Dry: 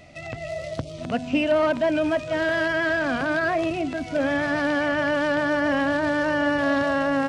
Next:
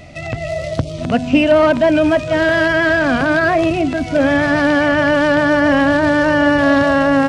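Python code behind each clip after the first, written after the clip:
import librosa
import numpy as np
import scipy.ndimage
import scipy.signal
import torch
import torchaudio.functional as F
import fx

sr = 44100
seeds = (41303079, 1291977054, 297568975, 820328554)

y = fx.low_shelf(x, sr, hz=180.0, db=6.0)
y = y * 10.0 ** (8.5 / 20.0)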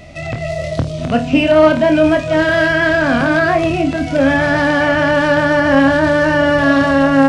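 y = fx.room_flutter(x, sr, wall_m=4.4, rt60_s=0.23)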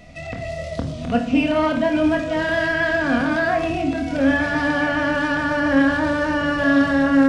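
y = fx.room_shoebox(x, sr, seeds[0], volume_m3=2600.0, walls='furnished', distance_m=1.8)
y = y * 10.0 ** (-8.0 / 20.0)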